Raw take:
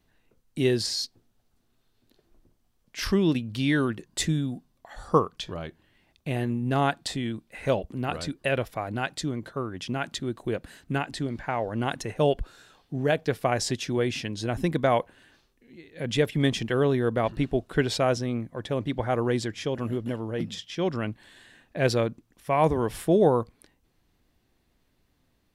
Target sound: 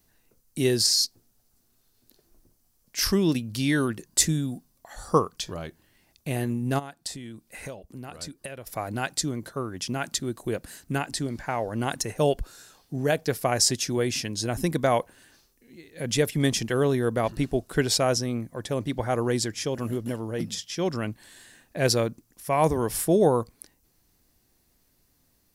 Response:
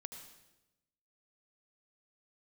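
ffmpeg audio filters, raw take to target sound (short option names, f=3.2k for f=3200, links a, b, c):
-filter_complex "[0:a]asplit=3[a][b][c];[a]afade=t=out:st=6.78:d=0.02[d];[b]acompressor=threshold=-37dB:ratio=6,afade=t=in:st=6.78:d=0.02,afade=t=out:st=8.66:d=0.02[e];[c]afade=t=in:st=8.66:d=0.02[f];[d][e][f]amix=inputs=3:normalize=0,aexciter=amount=4.1:drive=3.6:freq=4.7k"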